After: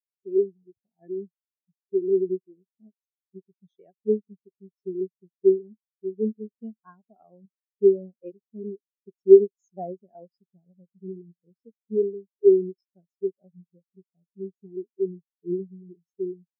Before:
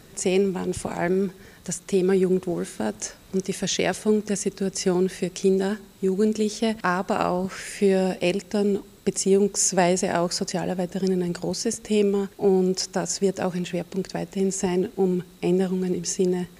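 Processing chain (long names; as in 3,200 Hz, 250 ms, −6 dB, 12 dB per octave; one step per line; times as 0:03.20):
low-pass filter 4,300 Hz
high-shelf EQ 3,200 Hz +8 dB
every bin expanded away from the loudest bin 4 to 1
level +3 dB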